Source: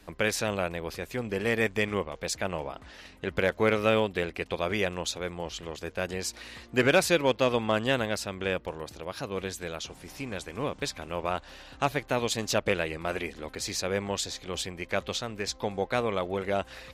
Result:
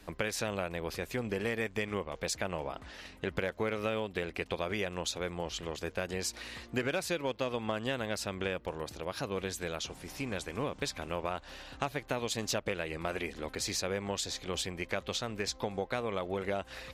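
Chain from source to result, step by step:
downward compressor 6 to 1, threshold −30 dBFS, peak gain reduction 12.5 dB

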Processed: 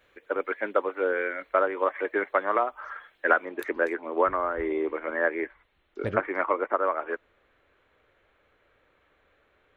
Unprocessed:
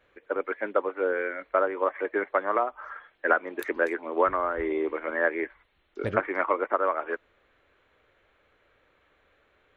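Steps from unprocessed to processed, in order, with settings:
high-shelf EQ 3,300 Hz +9.5 dB, from 0:03.45 −3.5 dB

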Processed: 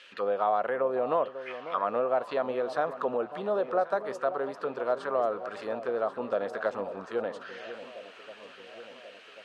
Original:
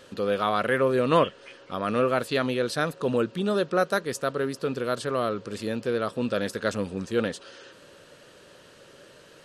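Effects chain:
downward compressor 6 to 1, threshold −25 dBFS, peak gain reduction 10 dB
envelope filter 730–2,700 Hz, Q 2.7, down, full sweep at −25.5 dBFS
on a send: delay that swaps between a low-pass and a high-pass 544 ms, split 980 Hz, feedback 75%, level −12 dB
on the sum: level +8.5 dB

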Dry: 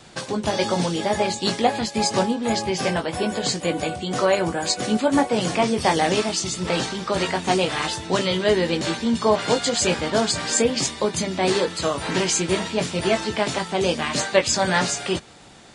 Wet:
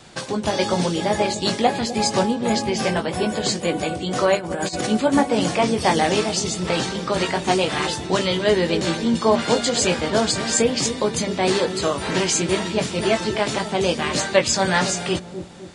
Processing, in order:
on a send: delay with a low-pass on its return 255 ms, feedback 46%, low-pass 430 Hz, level −7 dB
0:04.36–0:04.87: on the sum: compressor whose output falls as the input rises −26 dBFS, ratio −0.5
level +1 dB

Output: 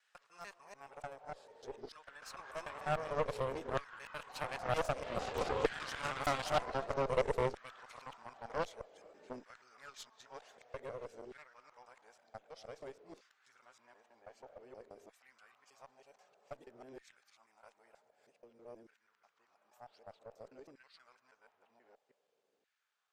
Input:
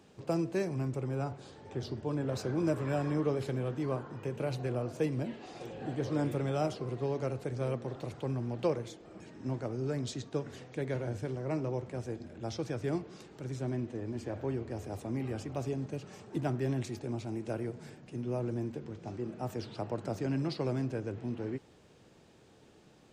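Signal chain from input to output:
reversed piece by piece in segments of 154 ms
source passing by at 0:05.70, 14 m/s, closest 12 metres
parametric band 330 Hz −10.5 dB 0.44 octaves
tube saturation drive 32 dB, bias 0.35
auto-filter high-pass saw down 0.53 Hz 360–1,700 Hz
harmonic generator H 3 −21 dB, 8 −17 dB, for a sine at −24.5 dBFS
level +8.5 dB

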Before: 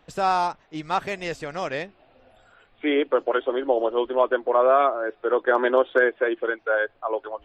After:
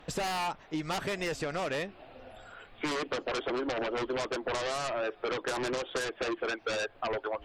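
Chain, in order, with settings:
in parallel at −9.5 dB: sine wavefolder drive 18 dB, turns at −7 dBFS
on the sum: downward compressor, threshold −22 dBFS, peak gain reduction 10 dB
level −8.5 dB

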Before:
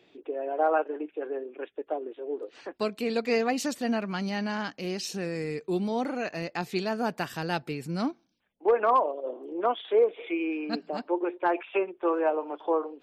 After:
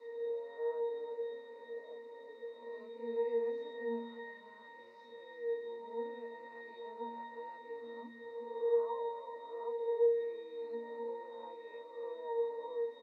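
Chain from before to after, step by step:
peak hold with a rise ahead of every peak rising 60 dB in 0.97 s
echo with shifted repeats 349 ms, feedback 37%, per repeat −35 Hz, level −10 dB
downward compressor 1.5 to 1, threshold −35 dBFS, peak gain reduction 7 dB
low-pass that shuts in the quiet parts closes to 2,000 Hz, open at −24.5 dBFS
bit-depth reduction 6 bits, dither triangular
high-pass filter 360 Hz 24 dB per octave
high-shelf EQ 4,400 Hz −10.5 dB
notch filter 3,300 Hz, Q 5.6
resonances in every octave A#, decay 0.77 s
level +10 dB

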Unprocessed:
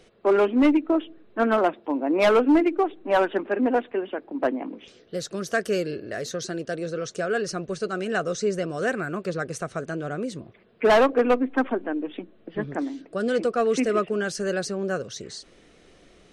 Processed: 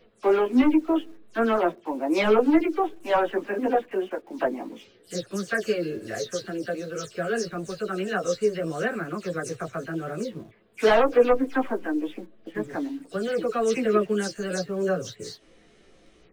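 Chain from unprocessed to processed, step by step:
every frequency bin delayed by itself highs early, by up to 112 ms
in parallel at −12 dB: bit reduction 7 bits
on the sum: multi-voice chorus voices 6, 0.14 Hz, delay 14 ms, depth 5 ms

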